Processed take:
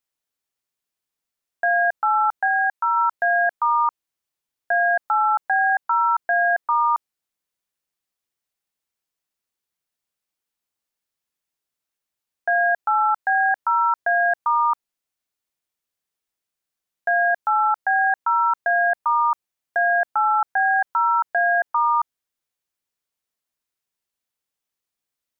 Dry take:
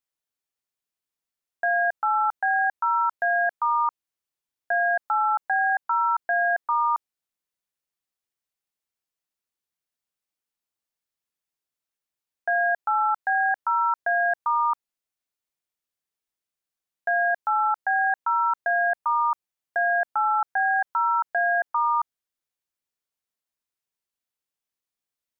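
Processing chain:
0:02.47–0:02.97: low-shelf EQ 360 Hz −11 dB
level +3.5 dB

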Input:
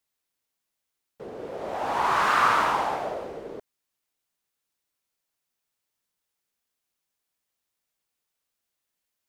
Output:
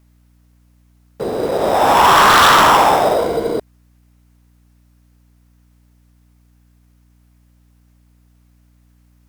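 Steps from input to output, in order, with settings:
0:03.18–0:03.58: EQ curve with evenly spaced ripples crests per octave 1.8, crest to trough 9 dB
in parallel at −4.5 dB: sample-rate reduction 4,400 Hz, jitter 0%
on the sum: sine wavefolder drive 10 dB, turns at −5.5 dBFS
mains hum 60 Hz, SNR 35 dB

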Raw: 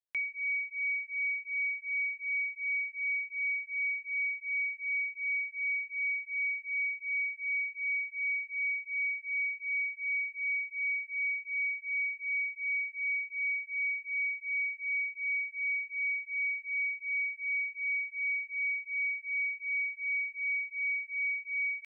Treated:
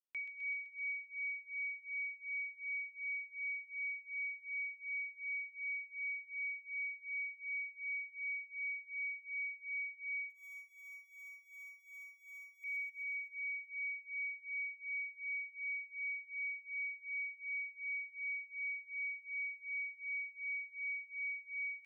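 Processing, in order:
0:10.30–0:12.64: running median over 25 samples
delay with a high-pass on its return 128 ms, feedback 72%, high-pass 2,100 Hz, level −5 dB
expander for the loud parts 1.5 to 1, over −46 dBFS
level −8 dB

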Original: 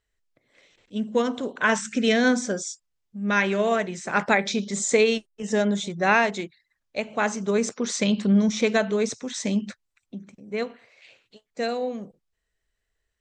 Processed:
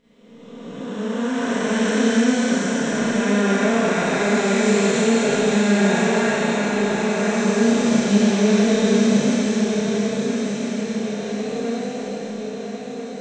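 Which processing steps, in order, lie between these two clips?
spectrum smeared in time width 949 ms
feedback echo with a long and a short gap by turns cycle 1,344 ms, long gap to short 3 to 1, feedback 51%, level −6.5 dB
four-comb reverb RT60 0.69 s, combs from 27 ms, DRR −6.5 dB
level +2 dB

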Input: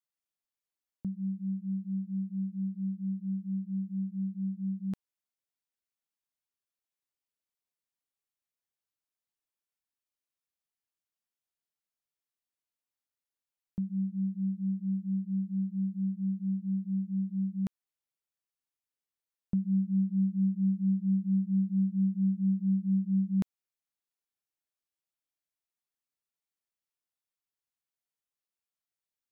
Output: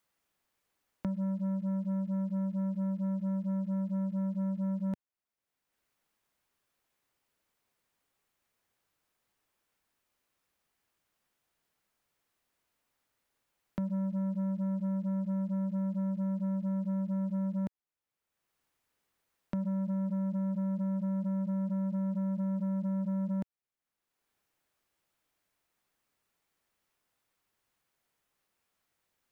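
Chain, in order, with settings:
brickwall limiter −29.5 dBFS, peak gain reduction 7.5 dB
leveller curve on the samples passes 2
multiband upward and downward compressor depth 70%

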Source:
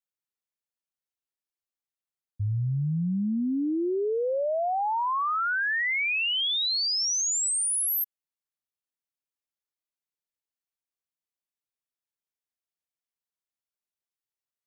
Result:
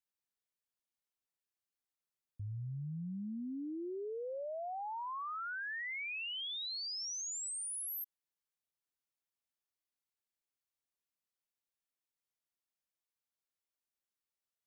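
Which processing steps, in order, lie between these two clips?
brickwall limiter −35.5 dBFS, peak gain reduction 12 dB
level −2.5 dB

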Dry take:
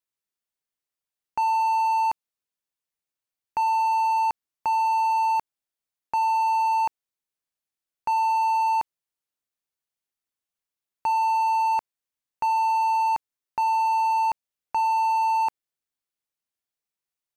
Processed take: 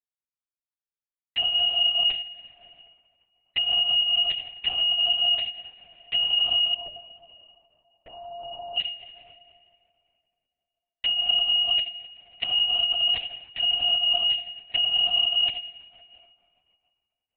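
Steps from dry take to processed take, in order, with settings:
neighbouring bands swapped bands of 2,000 Hz
high-pass filter 88 Hz 24 dB per octave
hum removal 260 Hz, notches 36
leveller curve on the samples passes 5
flanger 0.58 Hz, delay 1.2 ms, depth 1.5 ms, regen −44%
0:06.74–0:08.77: low-pass with resonance 590 Hz, resonance Q 4.9
convolution reverb RT60 2.8 s, pre-delay 6 ms, DRR 9 dB
linear-prediction vocoder at 8 kHz whisper

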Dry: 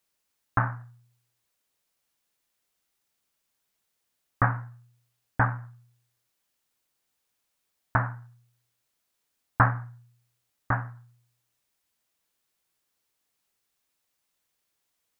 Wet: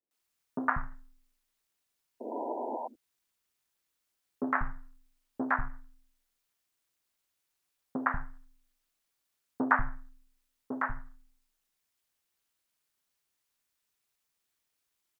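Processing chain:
sound drawn into the spectrogram noise, 0:02.20–0:02.77, 360–870 Hz −30 dBFS
ring modulation 140 Hz
three-band delay without the direct sound mids, highs, lows 110/190 ms, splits 180/600 Hz

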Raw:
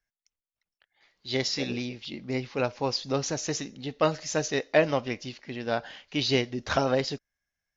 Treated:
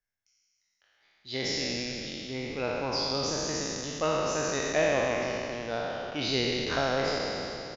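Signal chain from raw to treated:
peak hold with a decay on every bin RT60 2.99 s
echo with shifted repeats 106 ms, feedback 63%, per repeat −110 Hz, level −14 dB
level −7.5 dB

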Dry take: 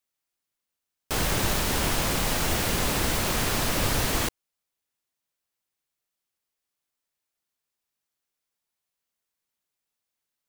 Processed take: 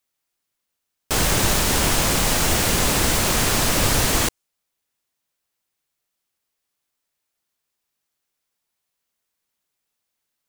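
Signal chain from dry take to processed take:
dynamic equaliser 7,600 Hz, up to +4 dB, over −47 dBFS, Q 1
level +5.5 dB

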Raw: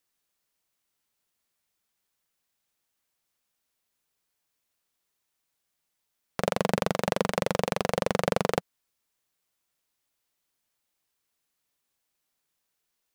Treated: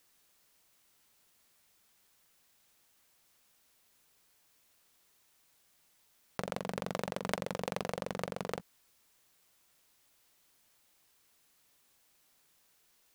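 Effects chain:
compressor whose output falls as the input rises −37 dBFS, ratio −1

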